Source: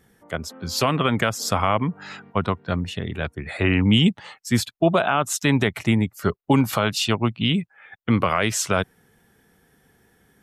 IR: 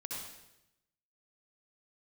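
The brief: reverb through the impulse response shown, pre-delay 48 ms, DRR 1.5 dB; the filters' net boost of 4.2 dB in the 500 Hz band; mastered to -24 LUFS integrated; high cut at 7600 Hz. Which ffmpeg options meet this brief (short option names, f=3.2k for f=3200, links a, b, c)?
-filter_complex "[0:a]lowpass=7.6k,equalizer=f=500:t=o:g=5.5,asplit=2[a][b];[1:a]atrim=start_sample=2205,adelay=48[c];[b][c]afir=irnorm=-1:irlink=0,volume=-1.5dB[d];[a][d]amix=inputs=2:normalize=0,volume=-5.5dB"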